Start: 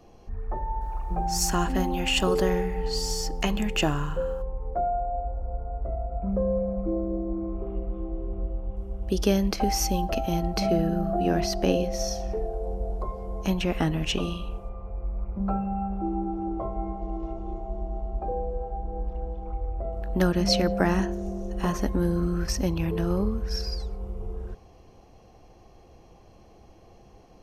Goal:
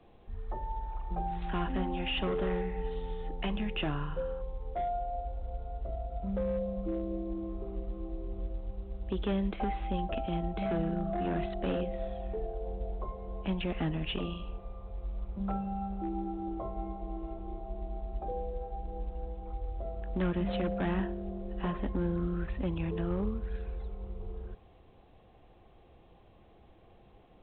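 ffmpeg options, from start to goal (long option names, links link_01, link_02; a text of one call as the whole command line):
ffmpeg -i in.wav -filter_complex "[0:a]acrossover=split=190[link_01][link_02];[link_02]volume=23dB,asoftclip=hard,volume=-23dB[link_03];[link_01][link_03]amix=inputs=2:normalize=0,volume=-6.5dB" -ar 8000 -c:a pcm_alaw out.wav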